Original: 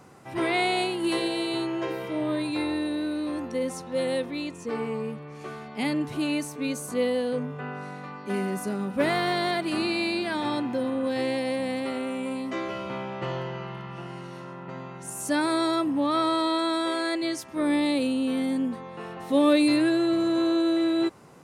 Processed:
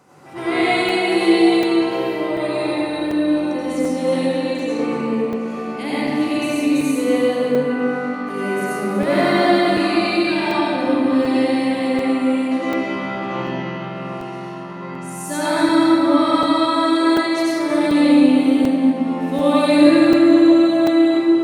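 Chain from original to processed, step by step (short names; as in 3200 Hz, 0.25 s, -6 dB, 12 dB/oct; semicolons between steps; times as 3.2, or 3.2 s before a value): HPF 160 Hz 6 dB/oct; echo with dull and thin repeats by turns 0.119 s, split 1100 Hz, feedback 65%, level -7 dB; reverb RT60 2.9 s, pre-delay 75 ms, DRR -10 dB; crackling interface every 0.74 s, samples 128, zero, from 0.89; gain -2 dB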